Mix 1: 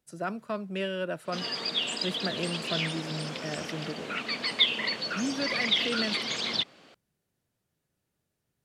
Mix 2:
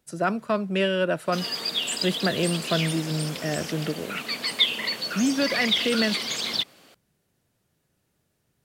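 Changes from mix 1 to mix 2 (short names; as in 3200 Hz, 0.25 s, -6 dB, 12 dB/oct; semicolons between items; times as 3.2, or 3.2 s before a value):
speech +8.5 dB; background: remove air absorption 95 m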